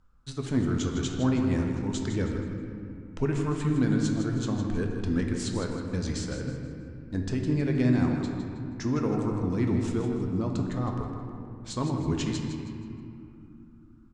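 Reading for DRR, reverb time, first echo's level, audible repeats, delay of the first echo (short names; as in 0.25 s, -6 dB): 1.0 dB, 2.7 s, -9.0 dB, 3, 0.159 s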